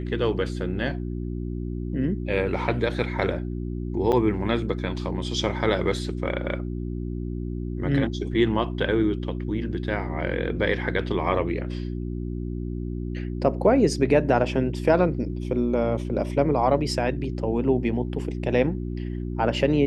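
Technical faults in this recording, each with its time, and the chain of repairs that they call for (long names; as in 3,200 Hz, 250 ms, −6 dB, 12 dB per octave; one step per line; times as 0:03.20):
mains hum 60 Hz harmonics 6 −30 dBFS
0:04.12–0:04.13: drop-out 7.4 ms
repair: hum removal 60 Hz, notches 6
repair the gap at 0:04.12, 7.4 ms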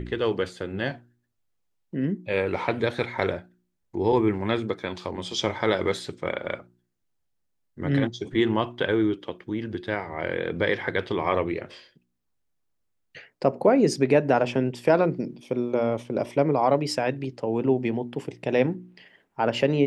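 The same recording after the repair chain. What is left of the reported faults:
none of them is left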